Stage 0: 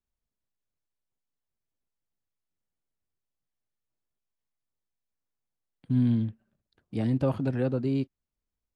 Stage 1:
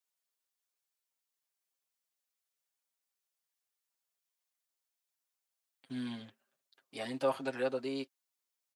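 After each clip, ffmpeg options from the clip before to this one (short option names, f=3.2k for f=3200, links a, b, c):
-af "highpass=610,highshelf=f=3.1k:g=8,aecho=1:1:7.5:0.79,volume=-2dB"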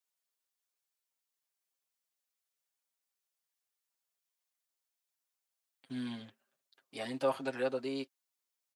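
-af anull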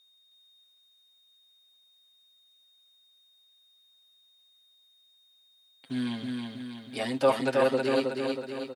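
-af "aeval=exprs='val(0)+0.000355*sin(2*PI*3700*n/s)':c=same,aecho=1:1:319|638|957|1276|1595|1914|2233:0.668|0.354|0.188|0.0995|0.0527|0.0279|0.0148,volume=8dB"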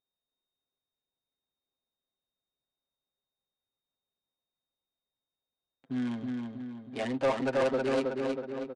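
-af "adynamicsmooth=sensitivity=5:basefreq=640,asoftclip=type=tanh:threshold=-21.5dB,aresample=22050,aresample=44100"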